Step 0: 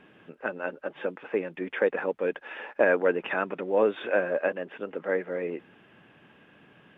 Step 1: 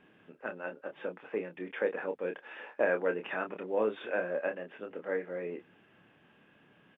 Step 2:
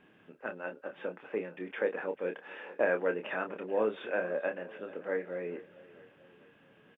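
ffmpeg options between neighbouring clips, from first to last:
-filter_complex "[0:a]asplit=2[a][b];[b]adelay=28,volume=-6.5dB[c];[a][c]amix=inputs=2:normalize=0,volume=-7.5dB"
-af "aecho=1:1:440|880|1320|1760:0.112|0.0583|0.0303|0.0158"

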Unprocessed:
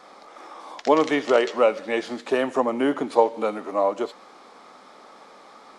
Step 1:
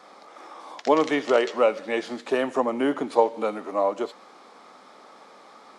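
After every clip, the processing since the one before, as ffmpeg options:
-af "highpass=86,volume=-1.5dB"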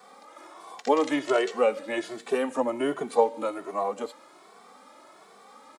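-filter_complex "[0:a]acrossover=split=770|4500[a][b][c];[c]aexciter=amount=1.5:drive=9.3:freq=7.3k[d];[a][b][d]amix=inputs=3:normalize=0,asplit=2[e][f];[f]adelay=2.2,afreqshift=1.3[g];[e][g]amix=inputs=2:normalize=1"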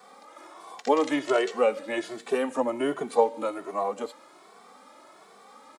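-af anull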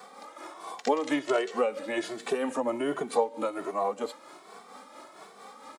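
-af "tremolo=f=4.4:d=0.5,acompressor=threshold=-34dB:ratio=2,volume=5.5dB"

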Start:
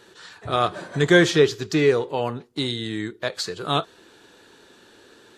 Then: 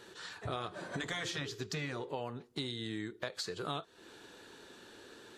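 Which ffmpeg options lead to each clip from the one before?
-af "afftfilt=real='re*lt(hypot(re,im),0.631)':imag='im*lt(hypot(re,im),0.631)':win_size=1024:overlap=0.75,acompressor=threshold=-33dB:ratio=6,volume=-3dB"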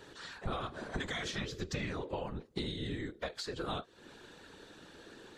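-af "highshelf=f=10k:g=-8.5,afftfilt=real='hypot(re,im)*cos(2*PI*random(0))':imag='hypot(re,im)*sin(2*PI*random(1))':win_size=512:overlap=0.75,lowshelf=f=130:g=7,volume=6dB"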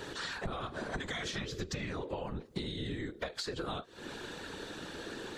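-af "acompressor=threshold=-46dB:ratio=6,volume=10.5dB"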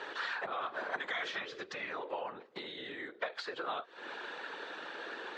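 -af "highpass=660,lowpass=2.5k,volume=5dB"

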